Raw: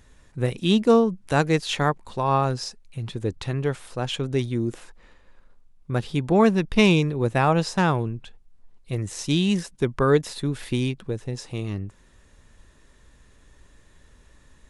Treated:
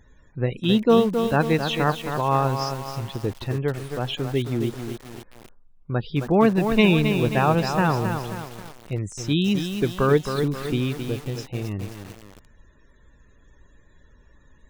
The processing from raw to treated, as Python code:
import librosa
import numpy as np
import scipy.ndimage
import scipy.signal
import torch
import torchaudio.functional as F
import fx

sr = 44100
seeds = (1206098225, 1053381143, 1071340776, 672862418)

y = fx.spec_topn(x, sr, count=64)
y = fx.echo_crushed(y, sr, ms=267, feedback_pct=55, bits=6, wet_db=-6.5)